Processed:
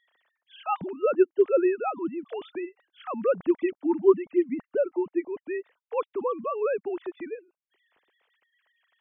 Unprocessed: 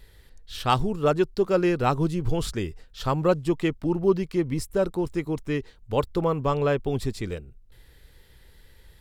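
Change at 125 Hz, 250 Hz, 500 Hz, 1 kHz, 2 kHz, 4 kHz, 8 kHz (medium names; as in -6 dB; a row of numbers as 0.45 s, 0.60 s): under -20 dB, -2.5 dB, 0.0 dB, -4.5 dB, -6.0 dB, under -15 dB, under -35 dB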